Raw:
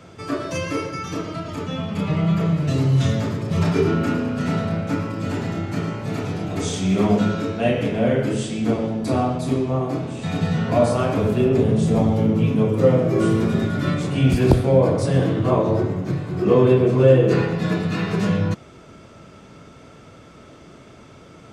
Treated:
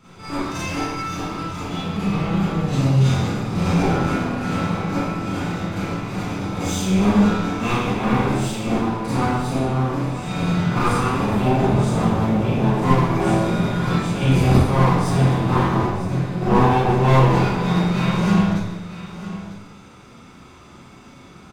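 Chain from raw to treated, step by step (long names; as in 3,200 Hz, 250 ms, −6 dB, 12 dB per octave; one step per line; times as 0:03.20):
lower of the sound and its delayed copy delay 0.82 ms
mains-hum notches 50/100 Hz
single-tap delay 951 ms −14 dB
four-comb reverb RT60 0.64 s, combs from 31 ms, DRR −9.5 dB
level −7.5 dB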